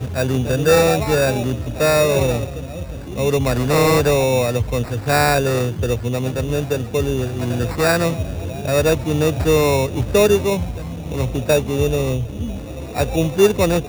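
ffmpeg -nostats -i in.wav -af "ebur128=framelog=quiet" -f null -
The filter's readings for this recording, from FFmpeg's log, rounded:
Integrated loudness:
  I:         -18.4 LUFS
  Threshold: -28.5 LUFS
Loudness range:
  LRA:         2.5 LU
  Threshold: -38.7 LUFS
  LRA low:   -20.2 LUFS
  LRA high:  -17.7 LUFS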